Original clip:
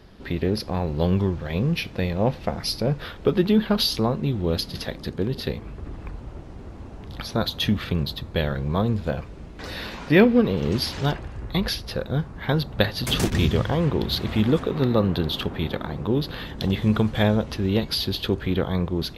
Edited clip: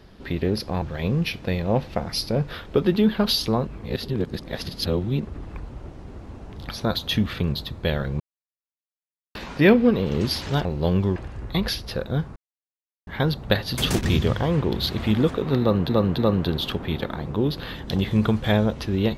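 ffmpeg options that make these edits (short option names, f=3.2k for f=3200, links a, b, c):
-filter_complex "[0:a]asplit=11[a][b][c][d][e][f][g][h][i][j][k];[a]atrim=end=0.822[l];[b]atrim=start=1.328:end=4.182[m];[c]atrim=start=4.178:end=5.762,asetpts=PTS-STARTPTS,areverse[n];[d]atrim=start=5.758:end=8.71,asetpts=PTS-STARTPTS,afade=t=out:st=2.948:d=0.004:c=hsin[o];[e]atrim=start=8.71:end=9.86,asetpts=PTS-STARTPTS,volume=0[p];[f]atrim=start=9.86:end=11.162,asetpts=PTS-STARTPTS,afade=t=in:d=0.004:c=hsin[q];[g]atrim=start=0.818:end=1.332[r];[h]atrim=start=11.158:end=12.36,asetpts=PTS-STARTPTS,afade=t=out:st=1.198:d=0.004:c=hsin,apad=pad_dur=0.71[s];[i]atrim=start=12.36:end=15.182,asetpts=PTS-STARTPTS,afade=t=in:d=0.004:c=hsin[t];[j]atrim=start=14.888:end=15.182[u];[k]atrim=start=14.888[v];[l][m]acrossfade=d=0.004:c1=hsin:c2=hsin[w];[w][n]acrossfade=d=0.004:c1=hsin:c2=hsin[x];[o][p][q]concat=n=3:v=0:a=1[y];[x][y]acrossfade=d=0.004:c1=hsin:c2=hsin[z];[z][r]acrossfade=d=0.004:c1=hsin:c2=hsin[aa];[s][t]concat=n=2:v=0:a=1[ab];[aa][ab]acrossfade=d=0.004:c1=hsin:c2=hsin[ac];[ac][u]acrossfade=d=0.004:c1=hsin:c2=hsin[ad];[ad][v]acrossfade=d=0.004:c1=hsin:c2=hsin"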